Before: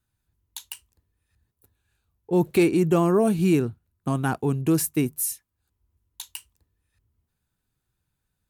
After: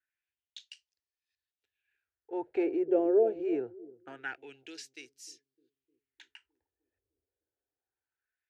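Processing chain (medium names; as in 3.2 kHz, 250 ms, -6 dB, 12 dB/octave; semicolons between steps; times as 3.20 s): distance through air 100 m; static phaser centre 460 Hz, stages 4; bucket-brigade echo 304 ms, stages 1024, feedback 41%, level -13.5 dB; LFO band-pass sine 0.24 Hz 540–5000 Hz; fifteen-band graphic EQ 160 Hz -9 dB, 630 Hz -7 dB, 1.6 kHz +5 dB, 4 kHz -7 dB, 10 kHz -9 dB; trim +5 dB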